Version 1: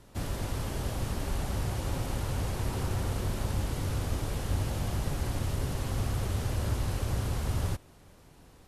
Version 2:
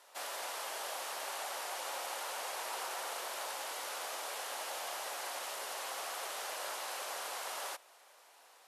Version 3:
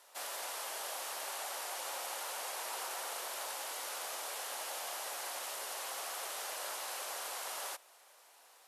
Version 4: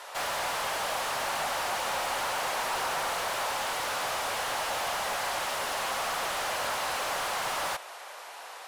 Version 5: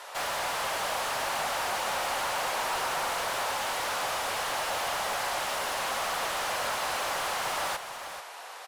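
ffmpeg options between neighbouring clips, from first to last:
-af "highpass=f=620:w=0.5412,highpass=f=620:w=1.3066,volume=1.19"
-af "highshelf=f=6300:g=6,volume=0.794"
-filter_complex "[0:a]asplit=2[s0][s1];[s1]highpass=f=720:p=1,volume=12.6,asoftclip=type=tanh:threshold=0.0422[s2];[s0][s2]amix=inputs=2:normalize=0,lowpass=f=1900:p=1,volume=0.501,volume=2.37"
-af "aecho=1:1:438:0.299"

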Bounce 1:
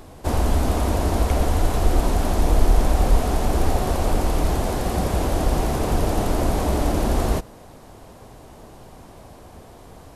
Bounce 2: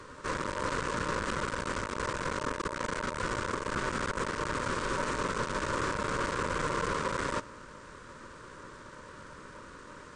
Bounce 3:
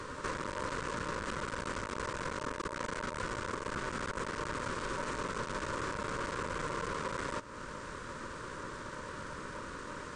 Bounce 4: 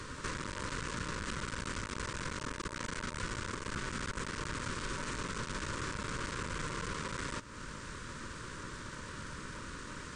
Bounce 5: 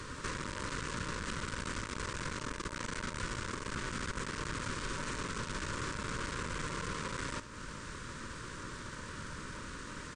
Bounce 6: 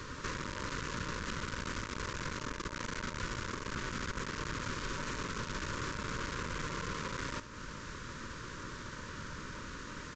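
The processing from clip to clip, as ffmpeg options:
-af "aeval=exprs='(tanh(17.8*val(0)+0.45)-tanh(0.45))/17.8':c=same,afftfilt=real='re*between(b*sr/4096,150,8800)':imag='im*between(b*sr/4096,150,8800)':win_size=4096:overlap=0.75,aeval=exprs='val(0)*sin(2*PI*760*n/s)':c=same,volume=1.33"
-af "acompressor=threshold=0.01:ratio=4,volume=1.78"
-af "equalizer=f=670:t=o:w=2:g=-12,volume=1.5"
-af "aecho=1:1:71:0.224"
-af "aresample=16000,aresample=44100"

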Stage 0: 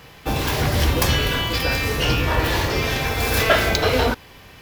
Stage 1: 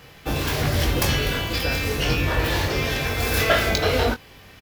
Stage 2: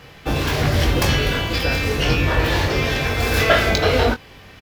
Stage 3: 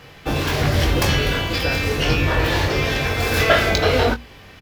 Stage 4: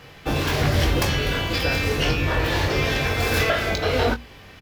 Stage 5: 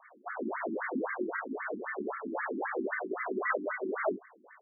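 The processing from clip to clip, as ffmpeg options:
-filter_complex "[0:a]equalizer=f=980:t=o:w=0.31:g=-4,asplit=2[s0][s1];[s1]adelay=21,volume=0.398[s2];[s0][s2]amix=inputs=2:normalize=0,volume=0.75"
-af "highshelf=f=8300:g=-10,volume=1.58"
-af "bandreject=f=60:t=h:w=6,bandreject=f=120:t=h:w=6,bandreject=f=180:t=h:w=6,bandreject=f=240:t=h:w=6"
-af "alimiter=limit=0.398:level=0:latency=1:release=429,volume=0.841"
-af "flanger=delay=20:depth=3.5:speed=1.3,highpass=f=190:t=q:w=0.5412,highpass=f=190:t=q:w=1.307,lowpass=f=2400:t=q:w=0.5176,lowpass=f=2400:t=q:w=0.7071,lowpass=f=2400:t=q:w=1.932,afreqshift=-65,afftfilt=real='re*between(b*sr/1024,250*pow(1600/250,0.5+0.5*sin(2*PI*3.8*pts/sr))/1.41,250*pow(1600/250,0.5+0.5*sin(2*PI*3.8*pts/sr))*1.41)':imag='im*between(b*sr/1024,250*pow(1600/250,0.5+0.5*sin(2*PI*3.8*pts/sr))/1.41,250*pow(1600/250,0.5+0.5*sin(2*PI*3.8*pts/sr))*1.41)':win_size=1024:overlap=0.75"

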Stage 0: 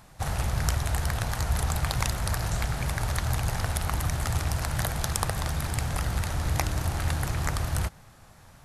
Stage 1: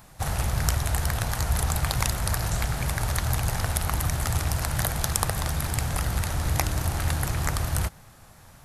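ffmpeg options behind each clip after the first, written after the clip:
-af "highshelf=f=11000:g=8.5,volume=1.19"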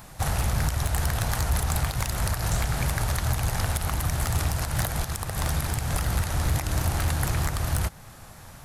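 -filter_complex "[0:a]asplit=2[s0][s1];[s1]acompressor=threshold=0.0178:ratio=6,volume=0.841[s2];[s0][s2]amix=inputs=2:normalize=0,alimiter=limit=0.282:level=0:latency=1:release=137,asoftclip=type=hard:threshold=0.133"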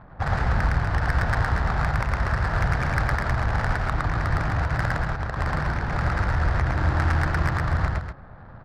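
-af "lowpass=f=1700:t=q:w=2.3,adynamicsmooth=sensitivity=3:basefreq=820,aecho=1:1:110.8|242:0.891|0.398"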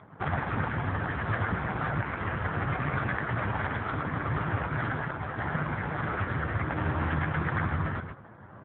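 -filter_complex "[0:a]asplit=2[s0][s1];[s1]adelay=20,volume=0.282[s2];[s0][s2]amix=inputs=2:normalize=0,volume=6.31,asoftclip=hard,volume=0.158" -ar 8000 -c:a libopencore_amrnb -b:a 4750

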